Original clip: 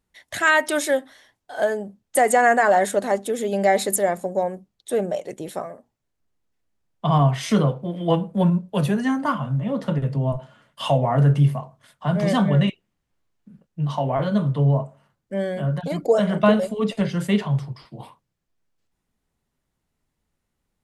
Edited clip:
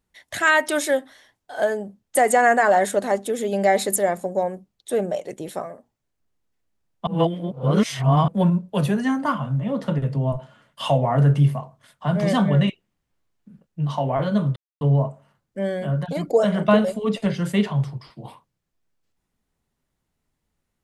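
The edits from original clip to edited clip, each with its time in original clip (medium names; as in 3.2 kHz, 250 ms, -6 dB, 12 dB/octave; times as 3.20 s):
7.07–8.28 s: reverse
14.56 s: insert silence 0.25 s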